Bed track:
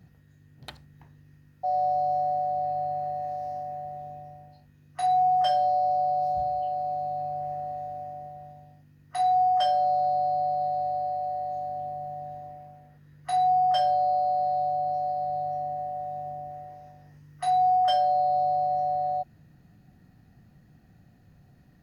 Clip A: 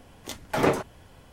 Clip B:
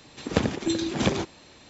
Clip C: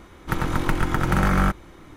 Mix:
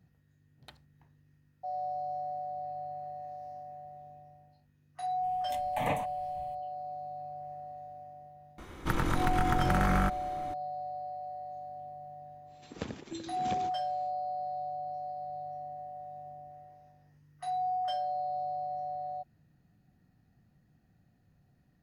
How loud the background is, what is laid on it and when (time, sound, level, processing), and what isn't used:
bed track -10.5 dB
5.23 add A -5.5 dB + fixed phaser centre 1400 Hz, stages 6
8.58 add C -1 dB + compressor 3:1, threshold -24 dBFS
12.45 add B -15.5 dB, fades 0.10 s

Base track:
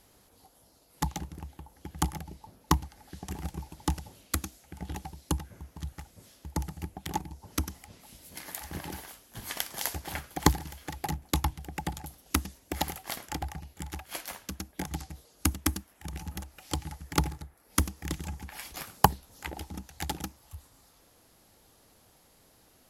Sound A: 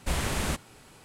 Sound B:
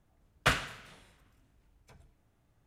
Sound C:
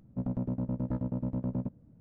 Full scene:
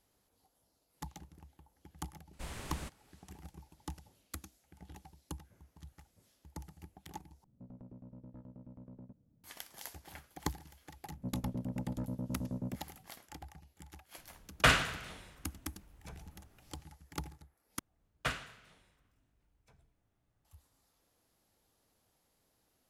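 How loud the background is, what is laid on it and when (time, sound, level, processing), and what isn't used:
base track -14.5 dB
2.33 add A -15.5 dB
7.44 replace with C -13 dB + compressor, threshold -36 dBFS
11.07 add C -6 dB
14.18 add B -10 dB + maximiser +16.5 dB
17.79 replace with B -8.5 dB

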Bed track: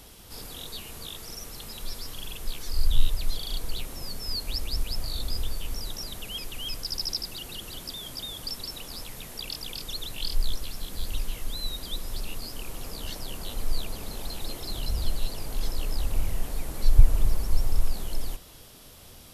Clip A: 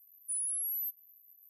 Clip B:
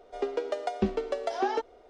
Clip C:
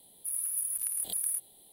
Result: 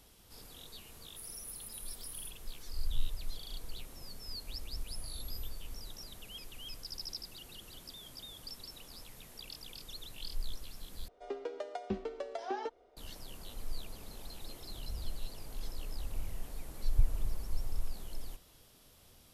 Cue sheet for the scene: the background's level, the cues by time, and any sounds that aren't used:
bed track -12 dB
0.91 add C -14.5 dB
4.59 add A -17.5 dB
11.08 replace with B -9.5 dB

